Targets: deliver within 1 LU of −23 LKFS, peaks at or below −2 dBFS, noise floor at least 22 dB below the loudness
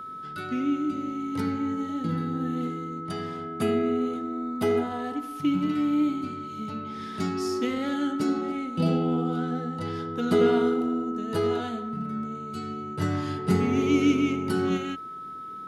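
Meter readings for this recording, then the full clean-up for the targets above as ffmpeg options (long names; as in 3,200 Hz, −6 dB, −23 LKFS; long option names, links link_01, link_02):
interfering tone 1,300 Hz; level of the tone −36 dBFS; integrated loudness −27.5 LKFS; sample peak −10.5 dBFS; target loudness −23.0 LKFS
→ -af "bandreject=frequency=1300:width=30"
-af "volume=4.5dB"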